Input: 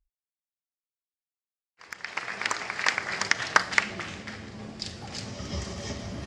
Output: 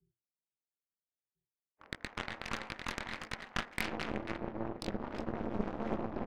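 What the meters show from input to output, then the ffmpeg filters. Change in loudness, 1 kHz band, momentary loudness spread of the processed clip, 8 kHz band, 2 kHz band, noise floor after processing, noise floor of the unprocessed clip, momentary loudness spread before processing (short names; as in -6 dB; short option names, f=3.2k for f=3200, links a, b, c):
-10.5 dB, -9.5 dB, 5 LU, -16.5 dB, -14.0 dB, under -85 dBFS, under -85 dBFS, 16 LU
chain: -filter_complex "[0:a]adynamicsmooth=sensitivity=5:basefreq=520,bandreject=f=5.3k:w=19,flanger=delay=19:depth=5.3:speed=1.5,afreqshift=120,areverse,acompressor=threshold=-41dB:ratio=6,areverse,tremolo=f=220:d=0.889,aemphasis=mode=reproduction:type=75kf,asplit=2[a][b];[b]adelay=1341,volume=-14dB,highshelf=f=4k:g=-30.2[c];[a][c]amix=inputs=2:normalize=0,aeval=exprs='0.0398*(cos(1*acos(clip(val(0)/0.0398,-1,1)))-cos(1*PI/2))+0.0126*(cos(6*acos(clip(val(0)/0.0398,-1,1)))-cos(6*PI/2))':c=same,volume=8.5dB"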